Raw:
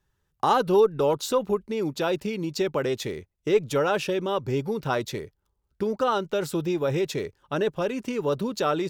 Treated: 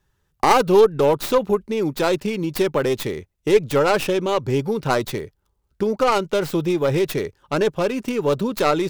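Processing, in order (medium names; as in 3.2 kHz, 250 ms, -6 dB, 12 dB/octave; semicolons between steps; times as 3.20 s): tracing distortion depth 0.24 ms; trim +5.5 dB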